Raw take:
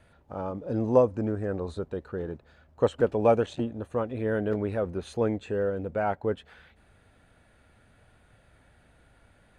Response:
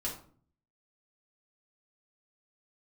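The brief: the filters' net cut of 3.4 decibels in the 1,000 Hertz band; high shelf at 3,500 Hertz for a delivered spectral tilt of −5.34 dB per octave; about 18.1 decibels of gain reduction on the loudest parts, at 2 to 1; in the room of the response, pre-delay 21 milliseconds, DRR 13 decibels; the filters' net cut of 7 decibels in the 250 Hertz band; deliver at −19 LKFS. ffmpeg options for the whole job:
-filter_complex "[0:a]equalizer=frequency=250:width_type=o:gain=-9,equalizer=frequency=1000:width_type=o:gain=-3.5,highshelf=frequency=3500:gain=-6.5,acompressor=threshold=-53dB:ratio=2,asplit=2[link_01][link_02];[1:a]atrim=start_sample=2205,adelay=21[link_03];[link_02][link_03]afir=irnorm=-1:irlink=0,volume=-15.5dB[link_04];[link_01][link_04]amix=inputs=2:normalize=0,volume=27dB"

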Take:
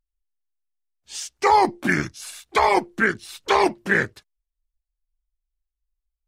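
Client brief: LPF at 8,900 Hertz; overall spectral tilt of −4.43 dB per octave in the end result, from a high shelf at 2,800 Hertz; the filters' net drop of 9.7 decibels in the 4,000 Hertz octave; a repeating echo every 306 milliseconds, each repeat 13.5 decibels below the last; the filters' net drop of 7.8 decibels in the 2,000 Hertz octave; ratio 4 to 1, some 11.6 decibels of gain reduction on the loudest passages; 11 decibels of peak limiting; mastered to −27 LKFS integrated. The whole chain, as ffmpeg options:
ffmpeg -i in.wav -af "lowpass=8900,equalizer=frequency=2000:width_type=o:gain=-6.5,highshelf=frequency=2800:gain=-7.5,equalizer=frequency=4000:width_type=o:gain=-4,acompressor=threshold=-28dB:ratio=4,alimiter=level_in=2.5dB:limit=-24dB:level=0:latency=1,volume=-2.5dB,aecho=1:1:306|612:0.211|0.0444,volume=11.5dB" out.wav

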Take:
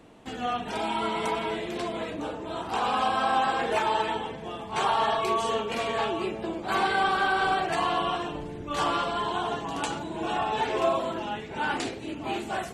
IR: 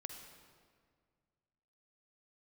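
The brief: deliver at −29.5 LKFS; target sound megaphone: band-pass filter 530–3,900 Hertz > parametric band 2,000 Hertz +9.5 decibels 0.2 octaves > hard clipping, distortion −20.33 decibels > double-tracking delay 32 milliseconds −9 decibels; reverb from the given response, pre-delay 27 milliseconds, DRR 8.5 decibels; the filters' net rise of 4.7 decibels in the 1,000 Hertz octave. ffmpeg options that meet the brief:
-filter_complex "[0:a]equalizer=frequency=1000:width_type=o:gain=6.5,asplit=2[link_01][link_02];[1:a]atrim=start_sample=2205,adelay=27[link_03];[link_02][link_03]afir=irnorm=-1:irlink=0,volume=-5dB[link_04];[link_01][link_04]amix=inputs=2:normalize=0,highpass=530,lowpass=3900,equalizer=frequency=2000:width_type=o:width=0.2:gain=9.5,asoftclip=type=hard:threshold=-15.5dB,asplit=2[link_05][link_06];[link_06]adelay=32,volume=-9dB[link_07];[link_05][link_07]amix=inputs=2:normalize=0,volume=-5.5dB"

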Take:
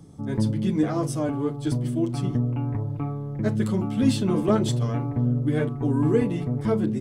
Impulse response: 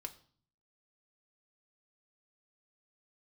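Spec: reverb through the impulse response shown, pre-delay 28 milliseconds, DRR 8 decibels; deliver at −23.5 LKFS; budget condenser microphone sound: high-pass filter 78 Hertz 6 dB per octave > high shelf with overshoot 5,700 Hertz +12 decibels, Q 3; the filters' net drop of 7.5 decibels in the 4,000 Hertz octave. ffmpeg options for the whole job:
-filter_complex "[0:a]equalizer=frequency=4000:width_type=o:gain=-5.5,asplit=2[link_01][link_02];[1:a]atrim=start_sample=2205,adelay=28[link_03];[link_02][link_03]afir=irnorm=-1:irlink=0,volume=-4.5dB[link_04];[link_01][link_04]amix=inputs=2:normalize=0,highpass=frequency=78:poles=1,highshelf=frequency=5700:width_type=q:width=3:gain=12"

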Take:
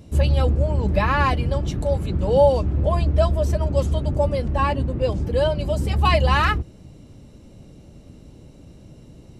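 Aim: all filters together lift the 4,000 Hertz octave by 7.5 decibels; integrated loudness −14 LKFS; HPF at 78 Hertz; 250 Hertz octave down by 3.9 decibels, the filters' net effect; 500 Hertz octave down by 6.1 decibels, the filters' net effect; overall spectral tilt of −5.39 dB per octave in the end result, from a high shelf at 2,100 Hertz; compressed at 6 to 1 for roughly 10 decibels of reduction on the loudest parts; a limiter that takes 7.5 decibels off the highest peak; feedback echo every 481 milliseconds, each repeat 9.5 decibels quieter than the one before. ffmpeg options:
ffmpeg -i in.wav -af "highpass=78,equalizer=frequency=250:width_type=o:gain=-4,equalizer=frequency=500:width_type=o:gain=-7,highshelf=frequency=2100:gain=3,equalizer=frequency=4000:width_type=o:gain=7.5,acompressor=threshold=-25dB:ratio=6,alimiter=limit=-22dB:level=0:latency=1,aecho=1:1:481|962|1443|1924:0.335|0.111|0.0365|0.012,volume=17.5dB" out.wav

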